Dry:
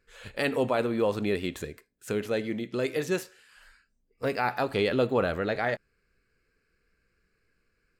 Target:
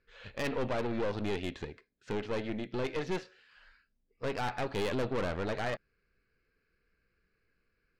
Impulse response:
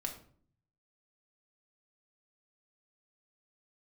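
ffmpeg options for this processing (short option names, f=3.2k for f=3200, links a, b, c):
-af "lowpass=f=4.8k:w=0.5412,lowpass=f=4.8k:w=1.3066,aeval=exprs='(tanh(28.2*val(0)+0.7)-tanh(0.7))/28.2':c=same"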